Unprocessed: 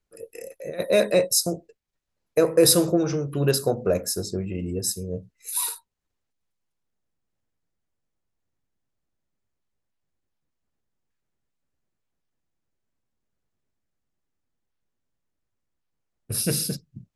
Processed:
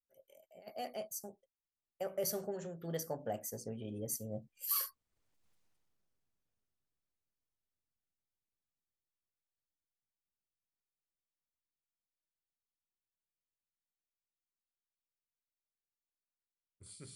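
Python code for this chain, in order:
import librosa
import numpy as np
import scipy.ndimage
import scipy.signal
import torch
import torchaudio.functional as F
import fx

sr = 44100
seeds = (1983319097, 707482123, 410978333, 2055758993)

y = fx.doppler_pass(x, sr, speed_mps=53, closest_m=11.0, pass_at_s=5.53)
y = y * 10.0 ** (5.5 / 20.0)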